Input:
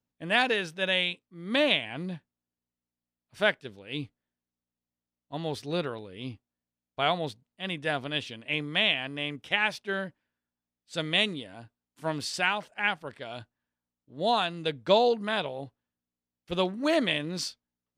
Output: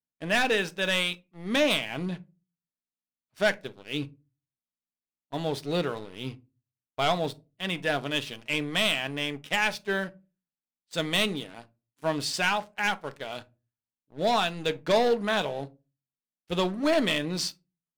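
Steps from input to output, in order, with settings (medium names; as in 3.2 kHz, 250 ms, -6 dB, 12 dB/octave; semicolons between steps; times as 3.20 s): bass shelf 110 Hz -5 dB; waveshaping leveller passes 3; reverberation RT60 0.25 s, pre-delay 5 ms, DRR 10.5 dB; trim -8 dB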